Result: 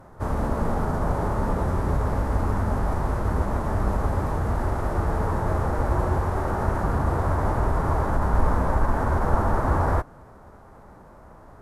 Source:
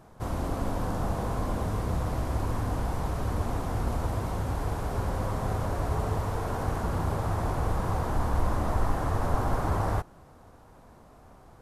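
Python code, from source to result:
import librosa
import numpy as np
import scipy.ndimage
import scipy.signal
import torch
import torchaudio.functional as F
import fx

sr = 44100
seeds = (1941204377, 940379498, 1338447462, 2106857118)

y = fx.vibrato(x, sr, rate_hz=7.7, depth_cents=16.0)
y = fx.pitch_keep_formants(y, sr, semitones=-3.0)
y = fx.high_shelf_res(y, sr, hz=2200.0, db=-6.5, q=1.5)
y = y * librosa.db_to_amplitude(6.0)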